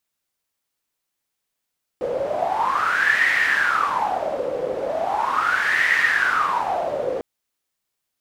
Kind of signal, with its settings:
wind from filtered noise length 5.20 s, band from 510 Hz, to 1,900 Hz, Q 11, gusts 2, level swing 6 dB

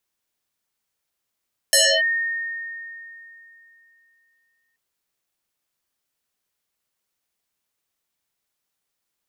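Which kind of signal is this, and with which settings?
two-operator FM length 3.03 s, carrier 1,840 Hz, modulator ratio 0.65, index 8.1, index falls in 0.29 s linear, decay 3.06 s, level −11.5 dB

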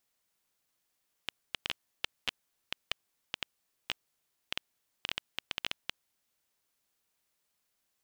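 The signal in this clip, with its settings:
Geiger counter clicks 5.8 per second −14 dBFS 5.12 s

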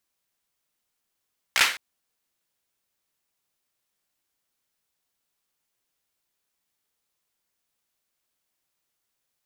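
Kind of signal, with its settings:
synth clap length 0.21 s, apart 16 ms, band 2,000 Hz, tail 0.39 s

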